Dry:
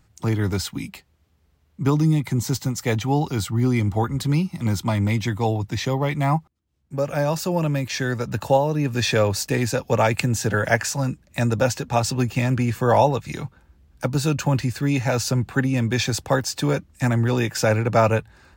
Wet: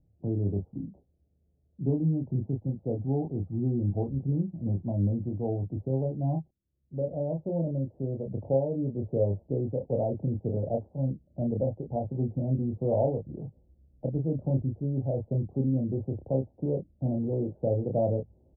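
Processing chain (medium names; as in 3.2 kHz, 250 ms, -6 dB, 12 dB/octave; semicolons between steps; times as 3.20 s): steep low-pass 670 Hz 48 dB/octave; doubling 30 ms -4 dB; trim -8 dB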